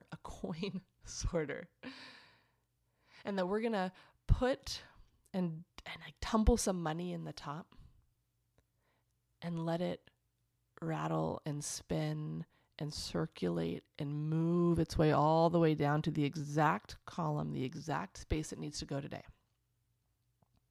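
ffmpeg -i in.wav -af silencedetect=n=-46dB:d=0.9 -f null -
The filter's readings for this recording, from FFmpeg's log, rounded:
silence_start: 2.11
silence_end: 3.21 | silence_duration: 1.10
silence_start: 7.72
silence_end: 9.42 | silence_duration: 1.70
silence_start: 19.29
silence_end: 20.70 | silence_duration: 1.41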